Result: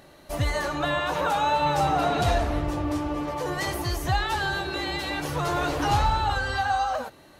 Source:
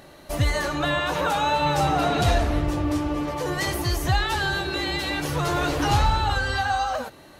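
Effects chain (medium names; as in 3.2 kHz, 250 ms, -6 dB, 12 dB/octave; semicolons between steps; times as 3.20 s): dynamic bell 840 Hz, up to +4 dB, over -34 dBFS, Q 0.88; trim -4 dB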